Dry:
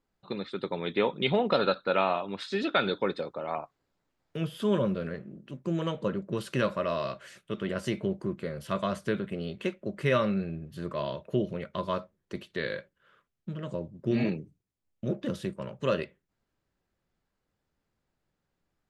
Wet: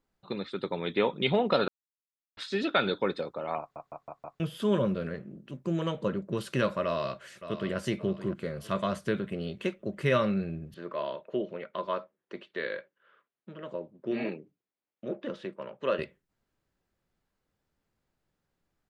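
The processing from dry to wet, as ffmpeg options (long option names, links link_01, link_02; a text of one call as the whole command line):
ffmpeg -i in.wav -filter_complex "[0:a]asplit=2[link_01][link_02];[link_02]afade=type=in:start_time=6.84:duration=0.01,afade=type=out:start_time=7.76:duration=0.01,aecho=0:1:570|1140|1710|2280:0.251189|0.087916|0.0307706|0.0107697[link_03];[link_01][link_03]amix=inputs=2:normalize=0,asettb=1/sr,asplit=3[link_04][link_05][link_06];[link_04]atrim=end=10.744[link_07];[link_05]atrim=start=10.74:end=15.99,asetpts=PTS-STARTPTS,afade=type=in:duration=0.004:curve=qsin,afade=type=out:start_time=5.246:duration=0.004:curve=qsin,highpass=330,lowpass=3100[link_08];[link_06]atrim=start=15.986[link_09];[link_07][link_08]acrossfade=duration=0.004:curve1=hsin:curve2=qsin[link_10];[link_10][link_09]acrossfade=duration=0.004:curve1=qsin:curve2=hsin,asplit=8[link_11][link_12][link_13][link_14][link_15][link_16][link_17][link_18];[link_11]atrim=end=1.68,asetpts=PTS-STARTPTS,afade=type=out:start_time=1.676:duration=0.004:curve=hsin[link_19];[link_12]atrim=start=1.68:end=2.37,asetpts=PTS-STARTPTS,volume=0[link_20];[link_13]atrim=start=2.37:end=3.762,asetpts=PTS-STARTPTS,afade=type=in:duration=0.004:curve=hsin[link_21];[link_14]atrim=start=3.598:end=3.762[link_22];[link_15]atrim=start=3.598:end=3.762[link_23];[link_16]atrim=start=3.598:end=3.762[link_24];[link_17]atrim=start=3.598:end=3.762[link_25];[link_18]atrim=start=4.398[link_26];[link_19][link_20][link_21]concat=n=3:v=0:a=1[link_27];[link_27][link_22]acrossfade=duration=0.004:curve1=hsin:curve2=hsin[link_28];[link_28][link_23]acrossfade=duration=0.004:curve1=hsin:curve2=hsin[link_29];[link_29][link_24]acrossfade=duration=0.004:curve1=hsin:curve2=hsin[link_30];[link_30][link_25]acrossfade=duration=0.004:curve1=hsin:curve2=hsin[link_31];[link_31][link_26]acrossfade=duration=0.004:curve1=hsin:curve2=hsin" out.wav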